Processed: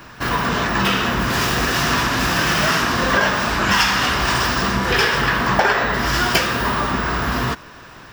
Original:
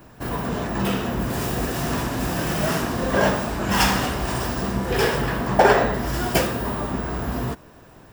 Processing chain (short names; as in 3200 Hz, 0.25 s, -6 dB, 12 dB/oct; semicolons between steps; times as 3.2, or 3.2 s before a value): band shelf 2500 Hz +10.5 dB 2.9 oct; compressor 6:1, threshold -17 dBFS, peak gain reduction 11 dB; gain +3.5 dB